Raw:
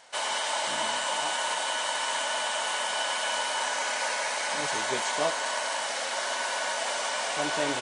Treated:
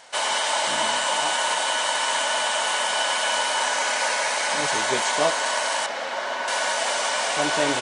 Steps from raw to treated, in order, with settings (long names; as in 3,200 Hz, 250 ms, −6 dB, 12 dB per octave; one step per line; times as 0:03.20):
0:05.86–0:06.48: head-to-tape spacing loss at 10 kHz 20 dB
level +6 dB